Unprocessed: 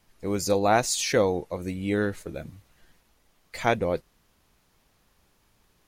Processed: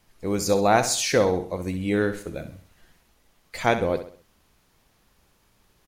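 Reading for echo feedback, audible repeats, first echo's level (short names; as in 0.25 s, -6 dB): 40%, 4, -11.0 dB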